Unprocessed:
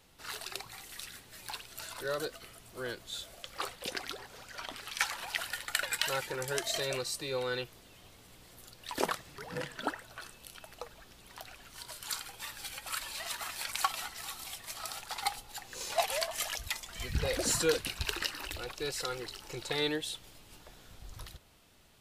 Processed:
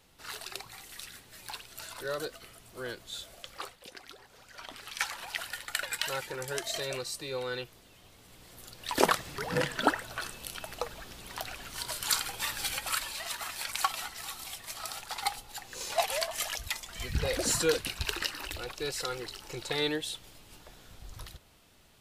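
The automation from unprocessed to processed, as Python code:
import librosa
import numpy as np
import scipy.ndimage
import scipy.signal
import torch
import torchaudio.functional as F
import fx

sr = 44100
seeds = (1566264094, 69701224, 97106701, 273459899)

y = fx.gain(x, sr, db=fx.line((3.49, 0.0), (3.89, -11.0), (4.85, -1.0), (8.07, -1.0), (9.23, 9.0), (12.75, 9.0), (13.18, 1.5)))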